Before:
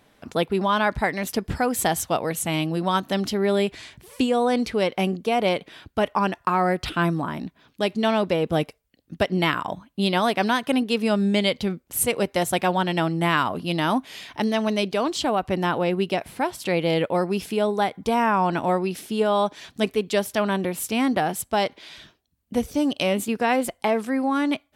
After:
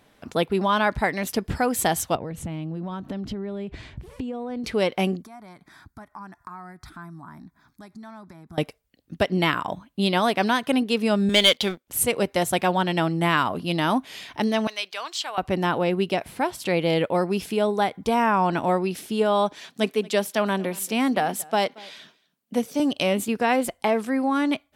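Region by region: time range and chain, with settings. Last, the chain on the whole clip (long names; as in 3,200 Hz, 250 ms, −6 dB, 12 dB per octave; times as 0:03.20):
0:02.15–0:04.64: RIAA equalisation playback + downward compressor 16 to 1, threshold −27 dBFS
0:05.22–0:08.58: downward compressor 3 to 1, threshold −40 dBFS + phaser with its sweep stopped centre 1,200 Hz, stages 4
0:11.29–0:11.88: high-pass filter 690 Hz 6 dB per octave + parametric band 3,400 Hz +9 dB 0.23 octaves + leveller curve on the samples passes 2
0:14.67–0:15.38: high-pass filter 1,300 Hz + parametric band 9,900 Hz −5 dB 0.58 octaves
0:19.59–0:22.80: high-pass filter 170 Hz 24 dB per octave + notch filter 330 Hz, Q 6.4 + single-tap delay 229 ms −23 dB
whole clip: no processing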